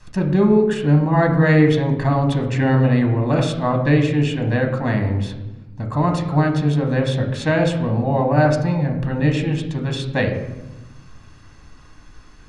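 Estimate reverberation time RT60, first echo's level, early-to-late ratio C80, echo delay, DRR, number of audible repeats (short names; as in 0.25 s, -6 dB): 1.0 s, none, 10.0 dB, none, 3.0 dB, none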